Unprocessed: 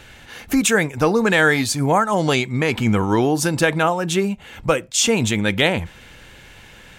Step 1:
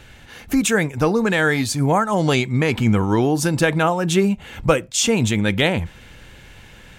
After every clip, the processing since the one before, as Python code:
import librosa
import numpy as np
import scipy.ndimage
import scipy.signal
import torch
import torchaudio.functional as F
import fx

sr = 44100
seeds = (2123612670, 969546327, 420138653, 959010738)

y = fx.low_shelf(x, sr, hz=250.0, db=5.5)
y = fx.rider(y, sr, range_db=3, speed_s=0.5)
y = y * 10.0 ** (-1.5 / 20.0)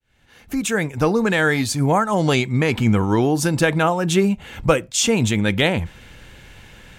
y = fx.fade_in_head(x, sr, length_s=1.05)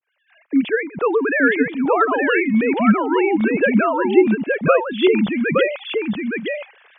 y = fx.sine_speech(x, sr)
y = y + 10.0 ** (-3.5 / 20.0) * np.pad(y, (int(868 * sr / 1000.0), 0))[:len(y)]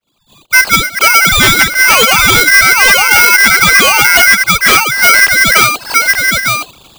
y = fx.fold_sine(x, sr, drive_db=10, ceiling_db=-1.5)
y = fx.air_absorb(y, sr, metres=320.0)
y = y * np.sign(np.sin(2.0 * np.pi * 1800.0 * np.arange(len(y)) / sr))